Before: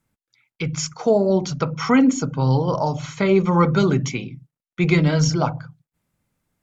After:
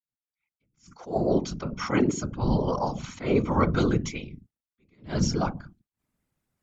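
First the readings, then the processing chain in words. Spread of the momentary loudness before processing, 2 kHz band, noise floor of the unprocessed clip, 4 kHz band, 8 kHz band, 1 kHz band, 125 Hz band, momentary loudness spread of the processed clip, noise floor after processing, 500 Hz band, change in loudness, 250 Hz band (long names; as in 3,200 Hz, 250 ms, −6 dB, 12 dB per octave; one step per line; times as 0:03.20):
11 LU, −9.0 dB, below −85 dBFS, −8.0 dB, can't be measured, −6.5 dB, −9.0 dB, 11 LU, below −85 dBFS, −7.5 dB, −7.0 dB, −7.5 dB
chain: fade in at the beginning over 1.23 s
random phases in short frames
level that may rise only so fast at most 190 dB per second
level −6 dB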